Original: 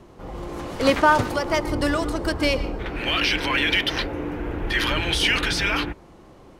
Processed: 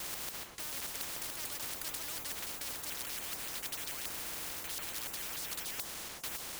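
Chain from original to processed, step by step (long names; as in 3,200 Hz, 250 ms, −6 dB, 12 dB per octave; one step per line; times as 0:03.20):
slices reordered back to front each 145 ms, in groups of 4
tilt shelving filter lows −4.5 dB, about 720 Hz
noise that follows the level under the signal 25 dB
high-shelf EQ 9,800 Hz +12 dB
reversed playback
downward compressor, threshold −31 dBFS, peak gain reduction 19.5 dB
reversed playback
every bin compressed towards the loudest bin 10 to 1
level −5.5 dB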